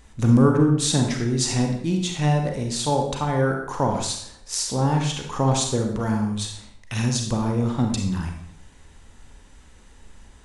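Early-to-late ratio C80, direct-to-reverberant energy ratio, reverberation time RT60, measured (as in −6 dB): 7.5 dB, 2.5 dB, 0.70 s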